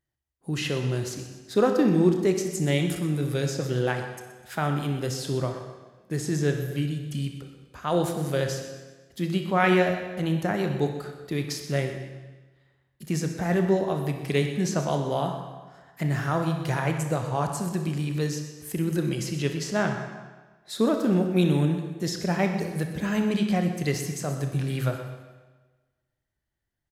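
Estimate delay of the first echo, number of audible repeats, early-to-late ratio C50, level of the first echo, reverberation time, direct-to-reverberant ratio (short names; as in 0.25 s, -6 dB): 0.125 s, 2, 6.0 dB, -14.5 dB, 1.3 s, 4.5 dB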